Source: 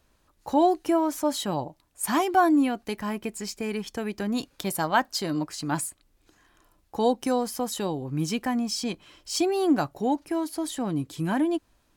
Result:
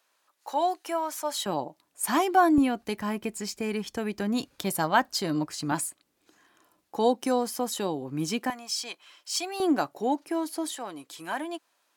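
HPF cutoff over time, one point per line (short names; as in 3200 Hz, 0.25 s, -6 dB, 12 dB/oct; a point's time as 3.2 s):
730 Hz
from 1.46 s 220 Hz
from 2.58 s 55 Hz
from 5.72 s 200 Hz
from 8.5 s 840 Hz
from 9.6 s 280 Hz
from 10.74 s 640 Hz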